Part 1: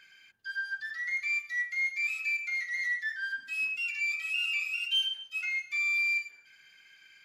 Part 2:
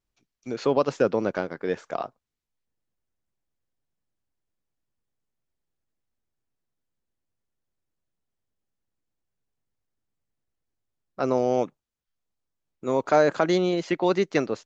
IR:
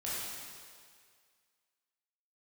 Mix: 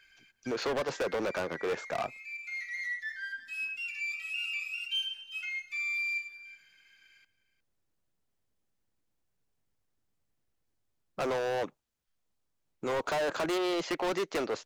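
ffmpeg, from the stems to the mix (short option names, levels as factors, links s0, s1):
-filter_complex "[0:a]volume=0.596,asplit=2[s0][s1];[s1]volume=0.141[s2];[1:a]acrossover=split=340|5900[s3][s4][s5];[s3]acompressor=threshold=0.00891:ratio=4[s6];[s4]acompressor=threshold=0.0891:ratio=4[s7];[s5]acompressor=threshold=0.00158:ratio=4[s8];[s6][s7][s8]amix=inputs=3:normalize=0,asoftclip=type=hard:threshold=0.0282,volume=1.41,asplit=2[s9][s10];[s10]apad=whole_len=319561[s11];[s0][s11]sidechaincompress=threshold=0.00501:ratio=8:attack=16:release=492[s12];[s2]aecho=0:1:359:1[s13];[s12][s9][s13]amix=inputs=3:normalize=0"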